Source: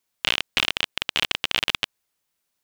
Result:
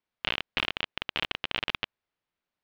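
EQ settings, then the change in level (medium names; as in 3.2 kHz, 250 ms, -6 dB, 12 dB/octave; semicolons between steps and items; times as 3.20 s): distance through air 270 m; -3.0 dB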